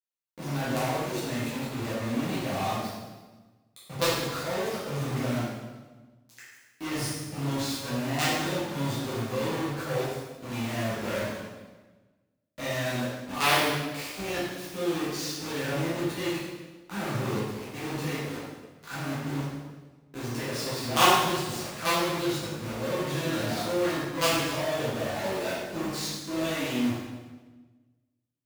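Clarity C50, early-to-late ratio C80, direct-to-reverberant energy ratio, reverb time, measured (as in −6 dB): −1.5 dB, 1.5 dB, −10.5 dB, 1.3 s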